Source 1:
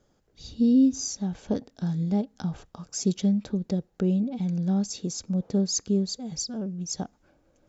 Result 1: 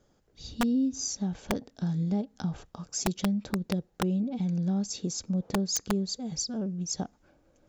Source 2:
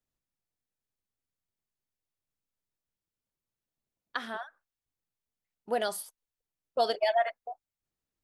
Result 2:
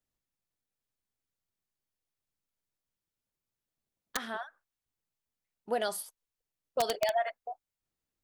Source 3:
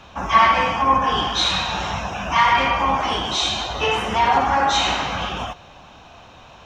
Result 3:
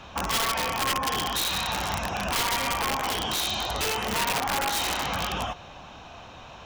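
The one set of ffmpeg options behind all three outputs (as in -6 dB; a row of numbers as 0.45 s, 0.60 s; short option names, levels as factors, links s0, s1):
-af "acompressor=threshold=0.0501:ratio=3,aeval=exprs='(mod(10*val(0)+1,2)-1)/10':c=same"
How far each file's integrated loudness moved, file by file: -3.5 LU, -2.0 LU, -7.5 LU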